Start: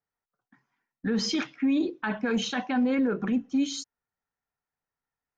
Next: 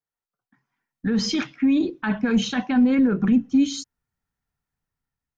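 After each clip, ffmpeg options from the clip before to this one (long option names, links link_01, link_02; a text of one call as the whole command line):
ffmpeg -i in.wav -af "asubboost=boost=4.5:cutoff=240,dynaudnorm=framelen=330:gausssize=5:maxgain=8.5dB,volume=-5dB" out.wav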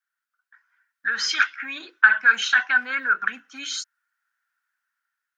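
ffmpeg -i in.wav -af "highpass=frequency=1500:width_type=q:width=8,volume=2dB" out.wav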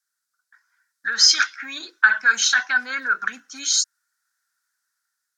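ffmpeg -i in.wav -af "aemphasis=mode=reproduction:type=50fm,aexciter=amount=10.1:drive=5.3:freq=4200" out.wav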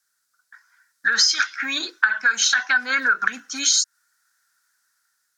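ffmpeg -i in.wav -af "acompressor=threshold=-23dB:ratio=10,volume=8dB" out.wav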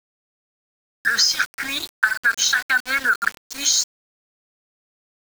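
ffmpeg -i in.wav -af "aeval=exprs='val(0)*gte(abs(val(0)),0.0473)':channel_layout=same" out.wav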